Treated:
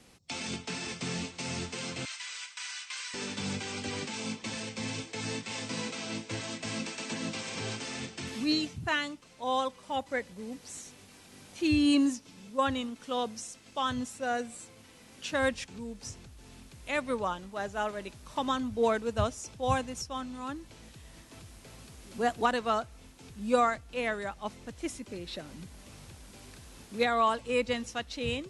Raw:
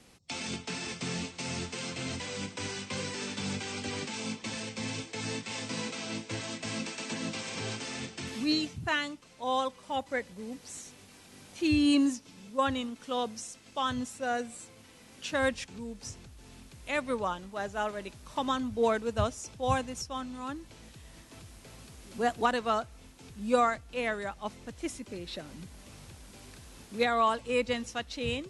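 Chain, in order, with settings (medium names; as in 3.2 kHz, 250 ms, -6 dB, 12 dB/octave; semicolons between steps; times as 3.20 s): 2.05–3.14 s: high-pass 1.2 kHz 24 dB/octave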